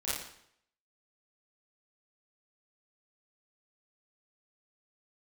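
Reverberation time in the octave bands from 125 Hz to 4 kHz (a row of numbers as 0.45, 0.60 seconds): 0.70, 0.65, 0.70, 0.70, 0.65, 0.65 seconds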